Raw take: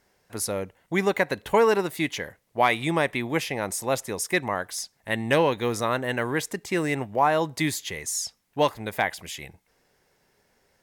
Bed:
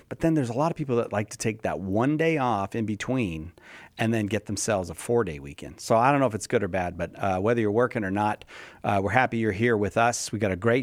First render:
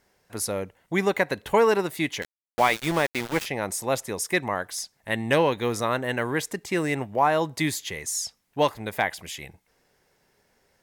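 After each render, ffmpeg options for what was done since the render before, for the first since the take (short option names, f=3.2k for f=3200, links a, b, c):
-filter_complex "[0:a]asettb=1/sr,asplit=3[a][b][c];[a]atrim=end=2.224[d];[b]atrim=start=2.22:end=3.46,asetpts=PTS-STARTPTS,afade=t=in:d=0.004:c=qsin,afade=t=out:st=1.236:d=0.004:c=qsin,aeval=exprs='val(0)*gte(abs(val(0)),0.0422)':c=same[e];[c]atrim=start=3.456[f];[d][e]acrossfade=d=0.004:c1=hsin:c2=qsin[g];[g][f]acrossfade=d=0.004:c1=qsin:c2=hsin"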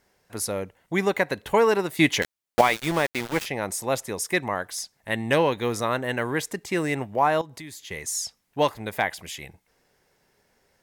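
-filter_complex "[0:a]asettb=1/sr,asplit=3[a][b][c];[a]atrim=end=7.414[d];[b]atrim=start=7.41:end=7.91,asetpts=PTS-STARTPTS,afade=t=in:d=0.004:c=qsin,afade=t=out:st=0.496:d=0.004:c=qsin,acompressor=threshold=-39dB:ratio=4:attack=3.2:release=140:knee=1:detection=peak[e];[c]atrim=start=7.906[f];[d][e]acrossfade=d=0.004:c1=hsin:c2=qsin[g];[g][f]acrossfade=d=0.004:c1=qsin:c2=hsin,asplit=3[h][i][j];[h]atrim=end=1.992[k];[i]atrim=start=1.988:end=2.612,asetpts=PTS-STARTPTS,volume=7.5dB[l];[j]atrim=start=2.608[m];[k][l]acrossfade=d=0.004:c1=hsin:c2=hsin[n];[n][m]acrossfade=d=0.004:c1=hsin:c2=hsin"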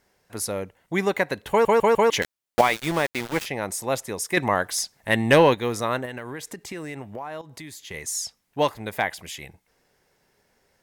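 -filter_complex "[0:a]asettb=1/sr,asplit=3[a][b][c];[a]atrim=end=4.374[d];[b]atrim=start=4.37:end=5.55,asetpts=PTS-STARTPTS,afade=t=in:d=0.004:c=qsin,afade=t=out:st=1.176:d=0.004:c=qsin,acontrast=52[e];[c]atrim=start=5.546[f];[d][e]acrossfade=d=0.004:c1=hsin:c2=qsin[g];[g][f]acrossfade=d=0.004:c1=qsin:c2=hsin,asettb=1/sr,asplit=3[h][i][j];[h]atrim=end=6.054[k];[i]atrim=start=6.05:end=7.94,asetpts=PTS-STARTPTS,afade=t=in:d=0.004:c=qsin,afade=t=out:st=1.886:d=0.004:c=qsin,acompressor=threshold=-31dB:ratio=6:attack=3.2:release=140:knee=1:detection=peak[l];[j]atrim=start=7.936[m];[k][l]acrossfade=d=0.004:c1=hsin:c2=qsin[n];[n][m]acrossfade=d=0.004:c1=qsin:c2=hsin,asplit=5[o][p][q][r][s];[o]atrim=end=1.652[t];[p]atrim=start=1.498:end=1.652[u];[q]atrim=start=1.498:end=1.652[v];[r]atrim=start=1.498:end=1.652[w];[s]atrim=start=2.098[x];[t][u]acrossfade=d=0.004:c1=hsin:c2=hsin[y];[y][v]acrossfade=d=0.004:c1=hsin:c2=hsin[z];[z][w]acrossfade=d=0.004:c1=hsin:c2=hsin[aa];[aa][x]acrossfade=d=0.004:c1=hsin:c2=hsin"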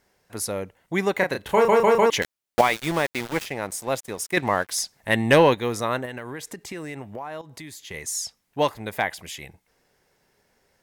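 -filter_complex "[0:a]asettb=1/sr,asplit=3[a][b][c];[a]atrim=end=1.184[d];[b]atrim=start=1.18:end=2.06,asetpts=PTS-STARTPTS,afade=t=in:d=0.004:c=qsin,afade=t=out:st=0.876:d=0.004:c=qsin,asplit=2[e][f];[f]adelay=32,volume=-4.5dB[g];[e][g]amix=inputs=2:normalize=0,atrim=end_sample=38808[h];[c]atrim=start=2.056[i];[d][h]acrossfade=d=0.004:c1=hsin:c2=qsin[j];[j][i]acrossfade=d=0.004:c1=qsin:c2=hsin,asettb=1/sr,asplit=3[k][l][m];[k]atrim=end=3.334[n];[l]atrim=start=3.33:end=4.72,asetpts=PTS-STARTPTS,afade=t=in:d=0.004:c=qsin,afade=t=out:st=1.386:d=0.004:c=qsin,aeval=exprs='sgn(val(0))*max(abs(val(0))-0.00708,0)':c=same[o];[m]atrim=start=4.716[p];[n][o]acrossfade=d=0.004:c1=hsin:c2=qsin[q];[q][p]acrossfade=d=0.004:c1=qsin:c2=hsin"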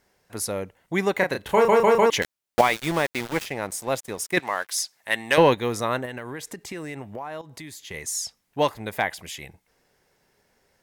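-filter_complex "[0:a]asettb=1/sr,asplit=3[a][b][c];[a]atrim=end=4.394[d];[b]atrim=start=4.39:end=5.38,asetpts=PTS-STARTPTS,afade=t=in:d=0.004:c=qsin,afade=t=out:st=0.986:d=0.004:c=qsin,highpass=f=1.2k:p=1[e];[c]atrim=start=5.376[f];[d][e]acrossfade=d=0.004:c1=hsin:c2=qsin[g];[g][f]acrossfade=d=0.004:c1=qsin:c2=hsin"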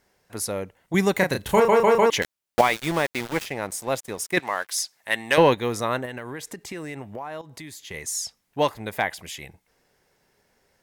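-filter_complex "[0:a]asettb=1/sr,asplit=3[a][b][c];[a]atrim=end=0.944[d];[b]atrim=start=0.94:end=1.6,asetpts=PTS-STARTPTS,afade=t=in:d=0.004:c=qsin,afade=t=out:st=0.656:d=0.004:c=qsin,bass=f=250:g=8,treble=f=4k:g=8[e];[c]atrim=start=1.596[f];[d][e]acrossfade=d=0.004:c1=hsin:c2=qsin[g];[g][f]acrossfade=d=0.004:c1=qsin:c2=hsin"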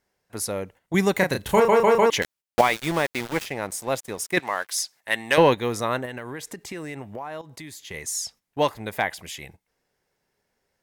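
-af "agate=range=-9dB:threshold=-47dB:ratio=16:detection=peak"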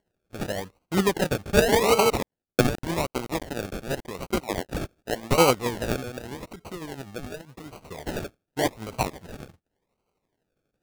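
-af "tremolo=f=12:d=0.45,acrusher=samples=35:mix=1:aa=0.000001:lfo=1:lforange=21:lforate=0.87"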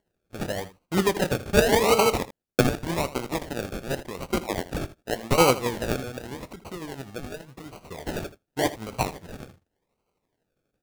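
-af "aecho=1:1:23|80:0.15|0.168"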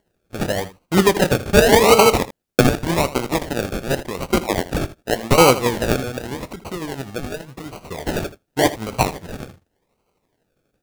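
-af "volume=8dB,alimiter=limit=-2dB:level=0:latency=1"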